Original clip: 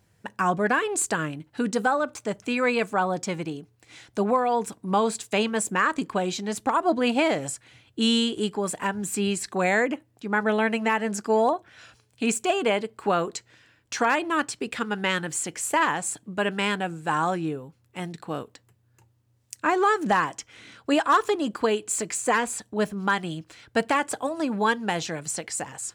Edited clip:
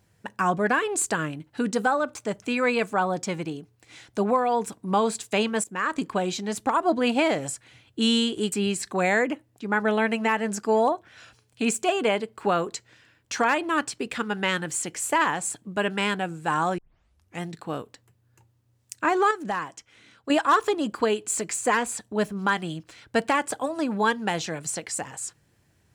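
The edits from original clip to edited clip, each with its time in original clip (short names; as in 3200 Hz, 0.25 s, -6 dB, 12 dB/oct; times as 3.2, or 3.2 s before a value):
5.64–5.99 fade in, from -17 dB
8.52–9.13 cut
17.39 tape start 0.64 s
19.92–20.91 gain -7 dB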